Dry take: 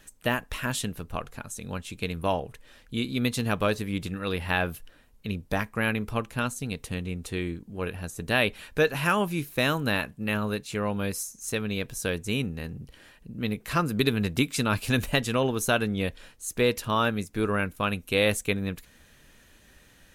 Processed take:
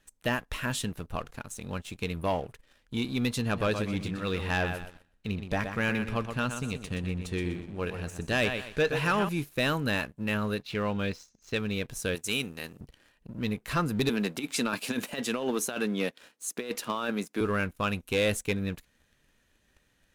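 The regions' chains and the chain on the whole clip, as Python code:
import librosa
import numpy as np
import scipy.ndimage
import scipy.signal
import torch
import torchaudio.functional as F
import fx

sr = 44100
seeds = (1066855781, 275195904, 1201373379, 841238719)

y = fx.chain(x, sr, fx.lowpass(hz=9500.0, slope=12),
    fx.echo_feedback(ms=123, feedback_pct=31, wet_db=-9), at=(3.42, 9.29))
y = fx.chain(y, sr, fx.lowpass(hz=4300.0, slope=24),
    fx.high_shelf(hz=3100.0, db=6.5), at=(10.63, 11.59))
y = fx.chain(y, sr, fx.highpass(hz=360.0, slope=6),
    fx.high_shelf(hz=3000.0, db=10.5), at=(12.15, 12.81))
y = fx.chain(y, sr, fx.highpass(hz=200.0, slope=24),
    fx.over_compress(threshold_db=-27.0, ratio=-0.5), at=(14.09, 17.41))
y = fx.high_shelf(y, sr, hz=11000.0, db=-6.5)
y = fx.leveller(y, sr, passes=2)
y = F.gain(torch.from_numpy(y), -8.5).numpy()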